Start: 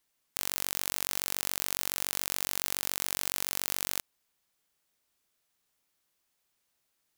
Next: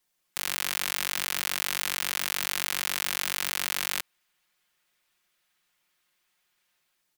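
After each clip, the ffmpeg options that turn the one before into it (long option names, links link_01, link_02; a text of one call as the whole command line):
ffmpeg -i in.wav -filter_complex "[0:a]aecho=1:1:5.6:0.58,acrossover=split=340|1200|3500[link_01][link_02][link_03][link_04];[link_03]dynaudnorm=framelen=150:gausssize=5:maxgain=9.5dB[link_05];[link_01][link_02][link_05][link_04]amix=inputs=4:normalize=0" out.wav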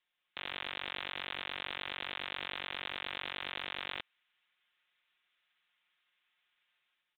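ffmpeg -i in.wav -af "tiltshelf=frequency=850:gain=-7.5,aresample=8000,asoftclip=type=hard:threshold=-23dB,aresample=44100,volume=-6.5dB" out.wav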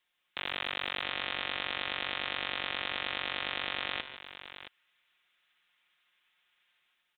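ffmpeg -i in.wav -af "aecho=1:1:147|670:0.188|0.251,volume=5dB" out.wav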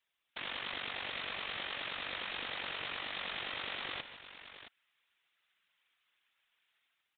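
ffmpeg -i in.wav -af "afftfilt=real='hypot(re,im)*cos(2*PI*random(0))':imag='hypot(re,im)*sin(2*PI*random(1))':win_size=512:overlap=0.75,volume=1dB" out.wav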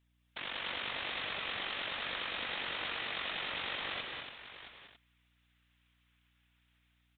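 ffmpeg -i in.wav -af "aecho=1:1:189.5|221.6|282.8:0.562|0.316|0.398,aeval=exprs='val(0)+0.000224*(sin(2*PI*60*n/s)+sin(2*PI*2*60*n/s)/2+sin(2*PI*3*60*n/s)/3+sin(2*PI*4*60*n/s)/4+sin(2*PI*5*60*n/s)/5)':channel_layout=same" out.wav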